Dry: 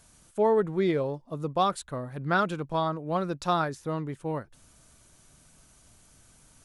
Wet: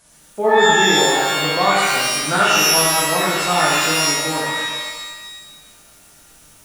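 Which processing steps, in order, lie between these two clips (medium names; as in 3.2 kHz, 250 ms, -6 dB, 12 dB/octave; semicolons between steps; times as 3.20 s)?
bass shelf 170 Hz -11.5 dB; pitch-shifted reverb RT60 1.3 s, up +12 st, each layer -2 dB, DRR -6.5 dB; trim +3 dB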